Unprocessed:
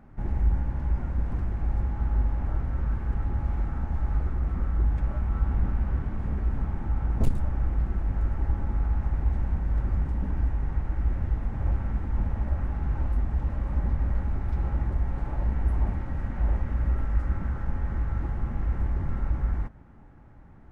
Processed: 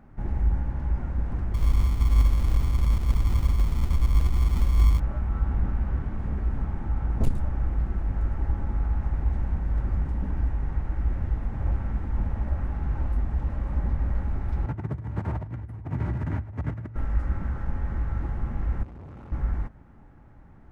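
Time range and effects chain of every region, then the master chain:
1.54–5 sample-rate reducer 1100 Hz + low shelf 120 Hz +6.5 dB
14.66–16.96 negative-ratio compressor -30 dBFS, ratio -0.5 + frequency shift +52 Hz + echo 0.107 s -20 dB
18.83–19.32 HPF 74 Hz 24 dB/oct + bell 1700 Hz -12.5 dB 0.41 oct + tube stage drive 40 dB, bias 0.65
whole clip: dry

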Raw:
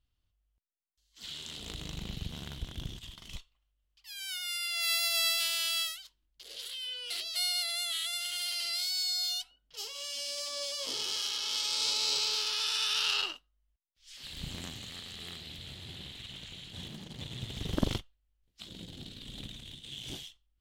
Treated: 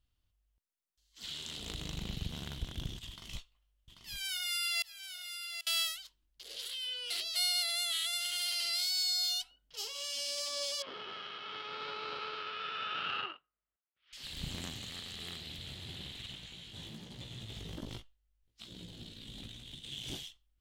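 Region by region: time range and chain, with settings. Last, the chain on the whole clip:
3.09–5.67 doubler 18 ms -8 dB + flipped gate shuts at -21 dBFS, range -32 dB + echo 0.788 s -8.5 dB
10.82–14.13 tube stage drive 21 dB, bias 0.65 + speaker cabinet 160–2700 Hz, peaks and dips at 260 Hz -5 dB, 400 Hz +3 dB, 1300 Hz +9 dB
16.35–19.73 compressor 3:1, threshold -38 dBFS + chorus 1.2 Hz, delay 16.5 ms, depth 2.2 ms
whole clip: dry

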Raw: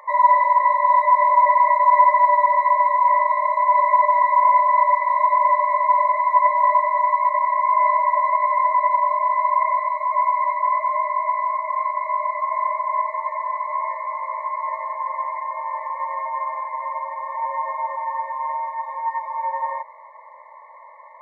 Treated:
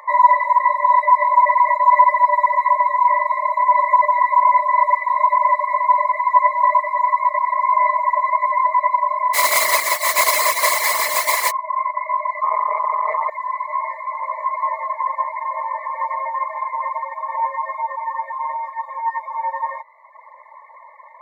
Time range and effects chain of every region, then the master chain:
9.33–11.5 spectral contrast lowered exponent 0.27 + echo 0.171 s -3.5 dB
12.43–13.3 tilt -3 dB/oct + AM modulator 160 Hz, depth 35% + fast leveller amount 100%
14.19–17.49 low shelf 500 Hz +7 dB + split-band echo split 1000 Hz, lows 0.115 s, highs 0.164 s, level -8 dB
whole clip: HPF 860 Hz 6 dB/oct; reverb removal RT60 0.99 s; gain +6 dB

